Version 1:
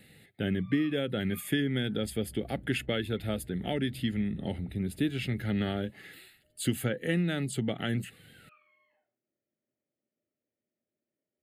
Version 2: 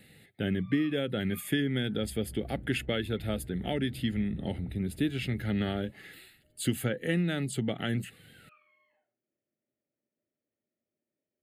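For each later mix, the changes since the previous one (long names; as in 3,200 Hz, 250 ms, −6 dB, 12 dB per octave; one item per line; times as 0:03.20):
second sound +5.0 dB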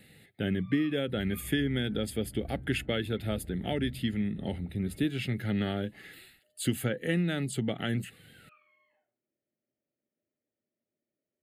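second sound: entry −0.85 s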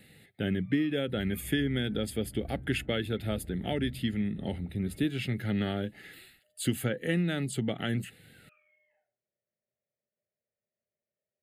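first sound: add phaser with its sweep stopped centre 1,100 Hz, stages 6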